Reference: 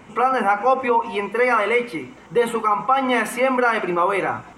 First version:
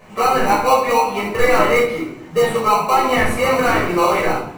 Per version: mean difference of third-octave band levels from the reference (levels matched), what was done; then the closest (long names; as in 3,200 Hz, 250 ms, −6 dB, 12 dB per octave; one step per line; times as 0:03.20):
9.0 dB: low-shelf EQ 330 Hz −7.5 dB
in parallel at −4 dB: sample-rate reduction 1,700 Hz, jitter 0%
on the sum: flanger 0.81 Hz, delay 9.6 ms, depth 3.2 ms, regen +80%
rectangular room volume 640 cubic metres, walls furnished, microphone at 5.7 metres
level −1 dB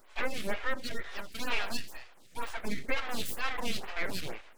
12.0 dB: high-pass filter 1,200 Hz 6 dB per octave
high-shelf EQ 7,500 Hz +7.5 dB
full-wave rectification
phaser with staggered stages 2.1 Hz
level −4.5 dB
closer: first